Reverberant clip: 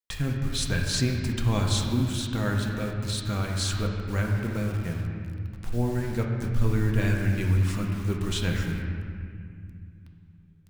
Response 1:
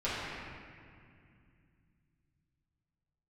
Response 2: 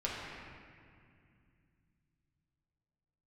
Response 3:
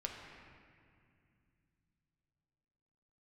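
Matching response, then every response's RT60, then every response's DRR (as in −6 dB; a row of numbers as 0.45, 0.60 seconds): 3; 2.3, 2.3, 2.3 seconds; −12.0, −6.0, 0.0 decibels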